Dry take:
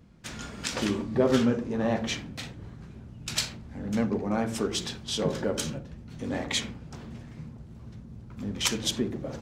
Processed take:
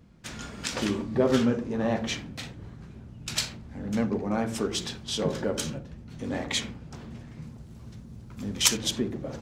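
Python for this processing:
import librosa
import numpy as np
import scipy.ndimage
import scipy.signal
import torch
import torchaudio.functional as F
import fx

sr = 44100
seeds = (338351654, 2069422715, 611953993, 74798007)

y = fx.high_shelf(x, sr, hz=4000.0, db=9.5, at=(7.42, 8.77))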